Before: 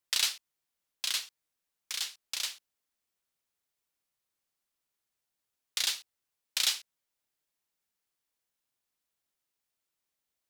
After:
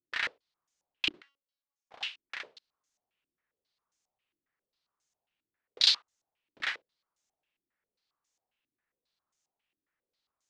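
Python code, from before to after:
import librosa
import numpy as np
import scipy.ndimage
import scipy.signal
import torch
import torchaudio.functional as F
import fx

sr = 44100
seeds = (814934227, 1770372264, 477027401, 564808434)

y = fx.comb_fb(x, sr, f0_hz=280.0, decay_s=0.37, harmonics='all', damping=0.0, mix_pct=90, at=(1.22, 1.92))
y = fx.filter_held_lowpass(y, sr, hz=7.4, low_hz=320.0, high_hz=6600.0)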